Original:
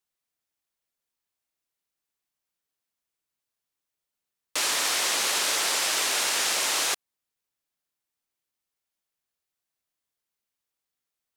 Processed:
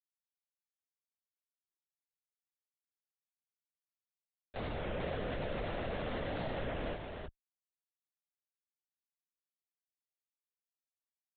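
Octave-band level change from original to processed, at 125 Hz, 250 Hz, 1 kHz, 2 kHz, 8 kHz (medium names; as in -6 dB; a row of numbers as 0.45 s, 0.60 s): no reading, +3.5 dB, -11.5 dB, -16.5 dB, under -40 dB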